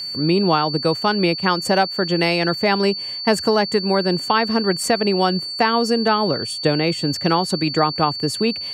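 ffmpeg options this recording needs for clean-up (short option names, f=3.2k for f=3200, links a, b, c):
-af "bandreject=f=4.5k:w=30"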